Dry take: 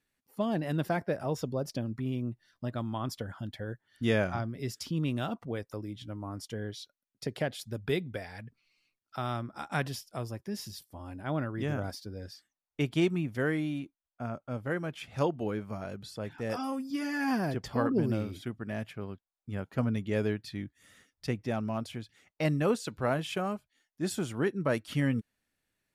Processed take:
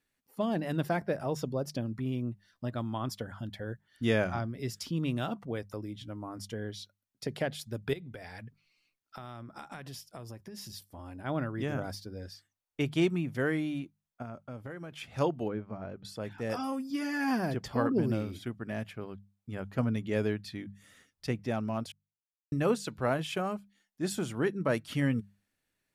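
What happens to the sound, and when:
0:07.93–0:11.19: downward compressor 12 to 1, threshold −39 dBFS
0:14.22–0:14.92: downward compressor, threshold −38 dBFS
0:15.48–0:16.05: head-to-tape spacing loss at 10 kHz 32 dB
0:21.92–0:22.52: silence
whole clip: mains-hum notches 50/100/150/200 Hz

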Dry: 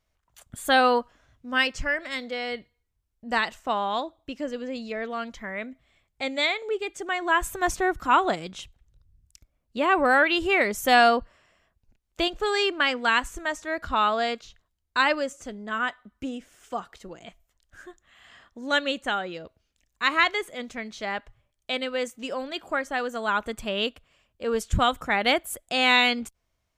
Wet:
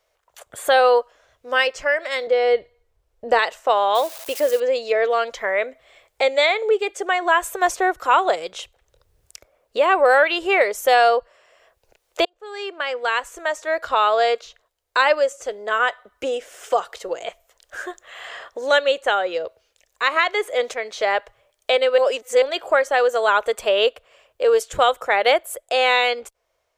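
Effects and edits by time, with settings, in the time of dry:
0:02.27–0:03.39: spectral tilt −3 dB per octave
0:03.95–0:04.60: spike at every zero crossing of −30.5 dBFS
0:12.25–0:15.06: fade in
0:20.16–0:20.74: multiband upward and downward compressor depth 70%
0:21.98–0:22.42: reverse
whole clip: automatic gain control gain up to 12 dB; low shelf with overshoot 330 Hz −13.5 dB, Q 3; multiband upward and downward compressor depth 40%; level −4 dB

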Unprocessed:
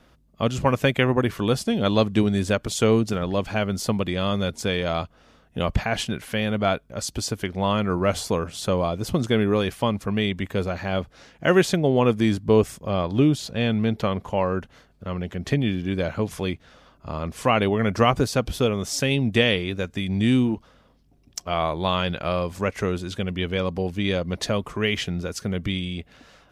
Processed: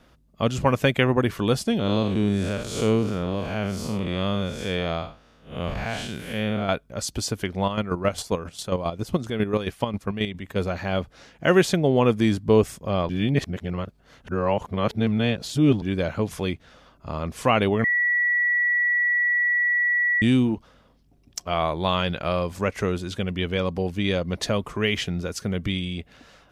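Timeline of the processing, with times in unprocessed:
0:01.79–0:06.69: spectrum smeared in time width 159 ms
0:07.64–0:10.56: square-wave tremolo 7.4 Hz, depth 60%, duty 30%
0:13.09–0:15.82: reverse
0:17.84–0:20.22: beep over 1,940 Hz −18.5 dBFS

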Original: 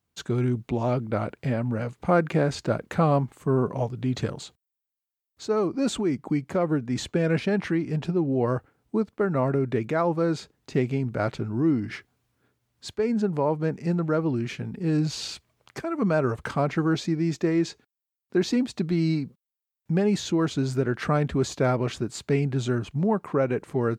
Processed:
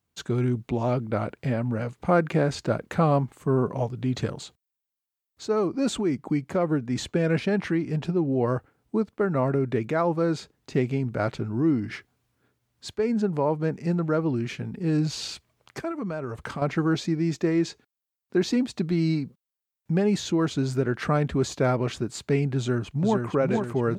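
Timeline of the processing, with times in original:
0:15.91–0:16.62: downward compressor 4 to 1, threshold −29 dBFS
0:22.57–0:23.27: delay throw 460 ms, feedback 55%, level −4.5 dB

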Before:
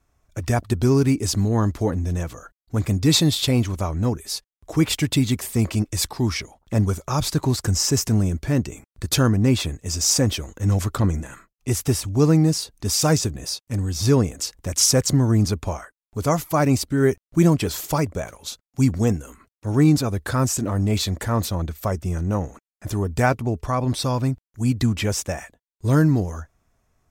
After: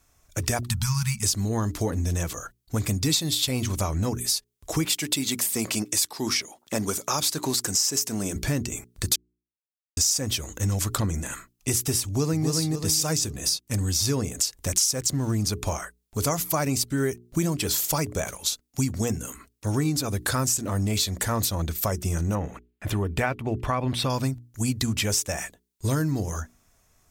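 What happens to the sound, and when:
0:00.65–0:01.24: time-frequency box erased 220–830 Hz
0:04.85–0:08.36: high-pass filter 230 Hz
0:09.16–0:09.97: silence
0:12.05–0:12.48: delay throw 270 ms, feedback 30%, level −1.5 dB
0:14.73–0:15.36: slack as between gear wheels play −42 dBFS
0:22.35–0:24.10: high shelf with overshoot 4,000 Hz −11.5 dB, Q 1.5
whole clip: high-shelf EQ 2,900 Hz +12 dB; mains-hum notches 60/120/180/240/300/360/420 Hz; downward compressor 5 to 1, threshold −24 dBFS; level +1.5 dB

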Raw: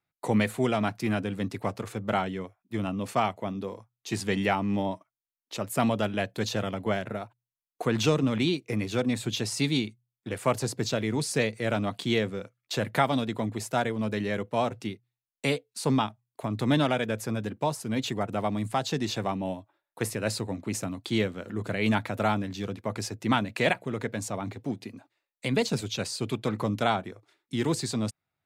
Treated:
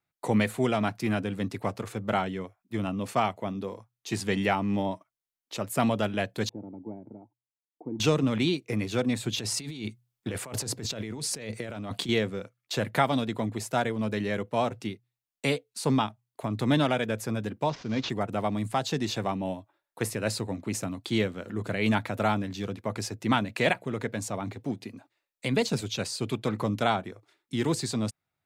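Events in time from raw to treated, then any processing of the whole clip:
0:06.49–0:08.00: formant resonators in series u
0:09.38–0:12.09: compressor whose output falls as the input rises −35 dBFS
0:17.69–0:18.10: variable-slope delta modulation 32 kbit/s

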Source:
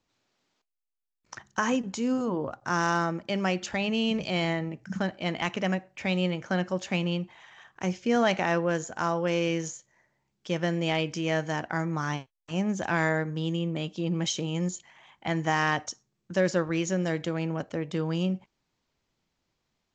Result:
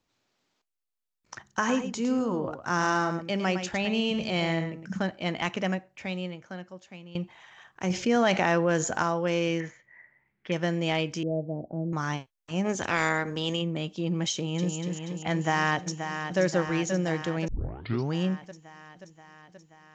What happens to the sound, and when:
0:01.47–0:04.93: single-tap delay 109 ms −9 dB
0:05.60–0:07.15: fade out quadratic, to −18 dB
0:07.90–0:09.03: envelope flattener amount 50%
0:09.60–0:10.52: low-pass with resonance 2,000 Hz, resonance Q 6.4
0:11.23–0:11.93: elliptic low-pass filter 620 Hz, stop band 80 dB
0:12.64–0:13.61: ceiling on every frequency bin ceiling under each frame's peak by 15 dB
0:14.34–0:14.74: delay throw 240 ms, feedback 70%, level −4 dB
0:15.33–0:16.39: delay throw 530 ms, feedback 70%, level −8 dB
0:17.48: tape start 0.65 s

